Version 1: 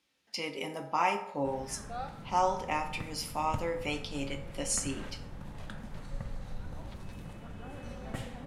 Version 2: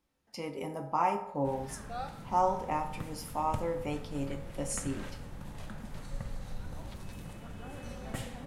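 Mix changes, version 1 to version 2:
speech: remove frequency weighting D; background: add treble shelf 5.9 kHz +8.5 dB

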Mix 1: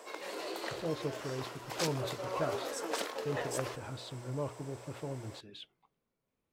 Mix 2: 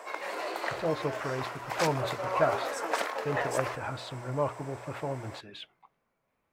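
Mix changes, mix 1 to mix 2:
speech +3.5 dB; master: add high-order bell 1.2 kHz +8.5 dB 2.3 oct

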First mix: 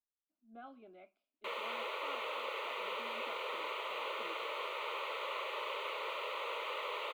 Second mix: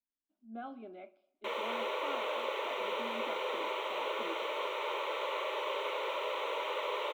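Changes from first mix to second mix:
speech +4.5 dB; reverb: on

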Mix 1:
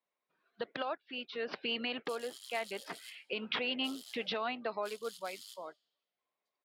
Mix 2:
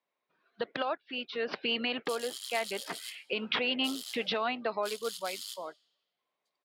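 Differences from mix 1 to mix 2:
speech +4.5 dB; background +9.5 dB

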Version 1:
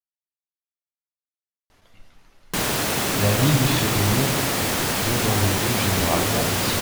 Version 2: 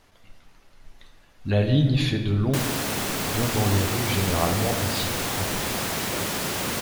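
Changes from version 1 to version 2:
speech: entry -1.70 s; background -4.5 dB

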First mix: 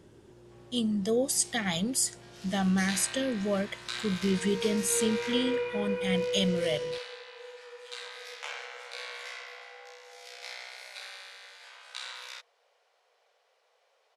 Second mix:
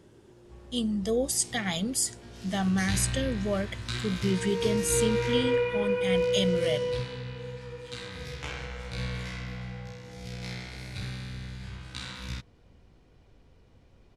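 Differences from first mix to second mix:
first sound: remove steep high-pass 530 Hz 48 dB/octave; second sound +5.0 dB

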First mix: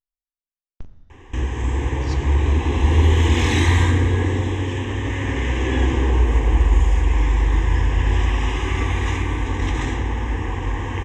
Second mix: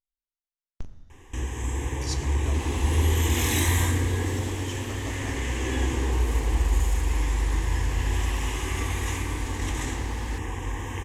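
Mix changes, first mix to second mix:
first sound -7.5 dB; second sound: unmuted; master: remove distance through air 140 m

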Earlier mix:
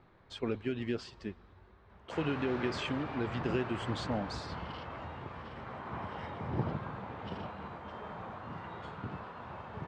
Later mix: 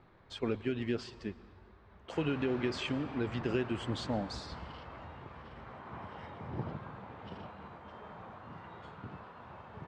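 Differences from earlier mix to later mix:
speech: send +9.0 dB; background -5.0 dB

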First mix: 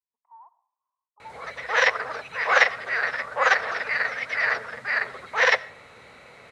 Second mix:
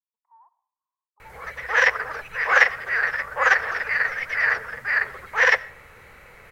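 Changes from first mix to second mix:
speech -5.0 dB; master: remove cabinet simulation 120–9500 Hz, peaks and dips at 250 Hz +5 dB, 660 Hz +5 dB, 1.7 kHz -5 dB, 3.9 kHz +9 dB

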